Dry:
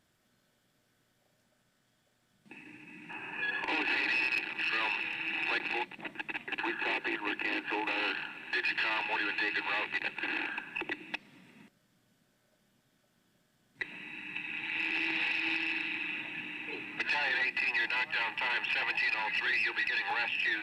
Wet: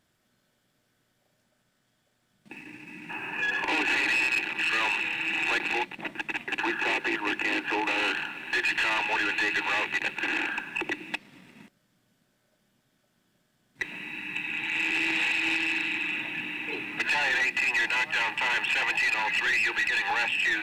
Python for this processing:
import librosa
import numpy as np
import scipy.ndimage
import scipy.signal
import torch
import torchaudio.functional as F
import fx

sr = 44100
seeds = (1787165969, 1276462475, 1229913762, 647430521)

y = fx.leveller(x, sr, passes=1)
y = y * librosa.db_to_amplitude(3.0)